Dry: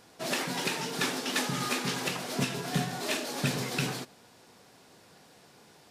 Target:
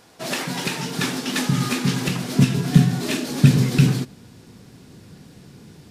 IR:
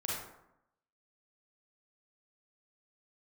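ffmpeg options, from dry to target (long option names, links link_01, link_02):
-af "asubboost=boost=9:cutoff=240,volume=5dB"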